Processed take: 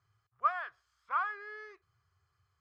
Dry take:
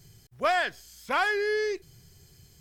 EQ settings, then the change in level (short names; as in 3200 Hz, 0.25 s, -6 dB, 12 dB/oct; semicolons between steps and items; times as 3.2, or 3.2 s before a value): synth low-pass 1200 Hz, resonance Q 8.7; differentiator; resonant low shelf 140 Hz +13.5 dB, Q 3; 0.0 dB